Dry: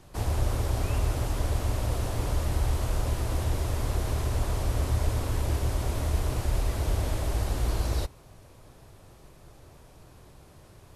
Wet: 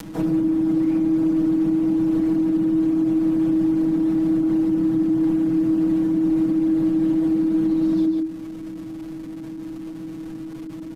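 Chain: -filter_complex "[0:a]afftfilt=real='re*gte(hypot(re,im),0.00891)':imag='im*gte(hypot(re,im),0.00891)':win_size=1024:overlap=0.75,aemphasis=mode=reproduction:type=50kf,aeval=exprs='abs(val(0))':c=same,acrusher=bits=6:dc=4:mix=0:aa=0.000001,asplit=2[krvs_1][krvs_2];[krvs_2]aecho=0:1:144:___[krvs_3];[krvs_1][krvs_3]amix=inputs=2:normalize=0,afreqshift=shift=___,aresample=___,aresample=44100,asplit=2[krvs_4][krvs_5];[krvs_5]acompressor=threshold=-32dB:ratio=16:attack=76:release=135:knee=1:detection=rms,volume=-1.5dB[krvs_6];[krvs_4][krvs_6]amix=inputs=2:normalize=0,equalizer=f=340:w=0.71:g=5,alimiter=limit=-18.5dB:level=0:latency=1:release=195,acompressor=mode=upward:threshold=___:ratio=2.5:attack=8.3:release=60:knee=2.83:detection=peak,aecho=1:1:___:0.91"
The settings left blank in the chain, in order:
0.335, -320, 32000, -33dB, 6.2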